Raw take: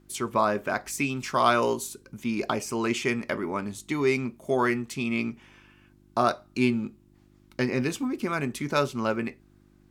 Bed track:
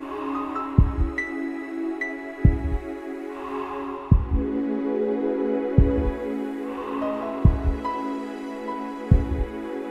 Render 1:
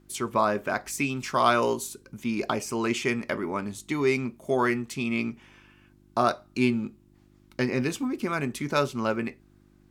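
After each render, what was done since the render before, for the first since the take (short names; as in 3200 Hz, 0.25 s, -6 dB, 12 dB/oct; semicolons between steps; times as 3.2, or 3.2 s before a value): nothing audible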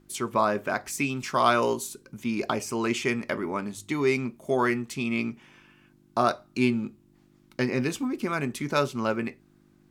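de-hum 50 Hz, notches 2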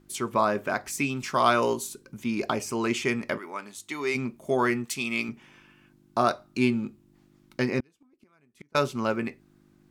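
3.37–4.14 HPF 1400 Hz -> 630 Hz 6 dB/oct; 4.85–5.29 tilt +2.5 dB/oct; 7.8–8.75 flipped gate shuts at -23 dBFS, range -35 dB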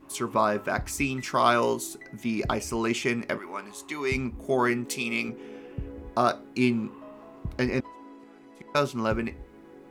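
add bed track -18.5 dB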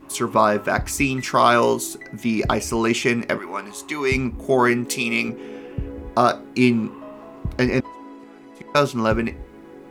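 gain +7 dB; limiter -3 dBFS, peak gain reduction 2.5 dB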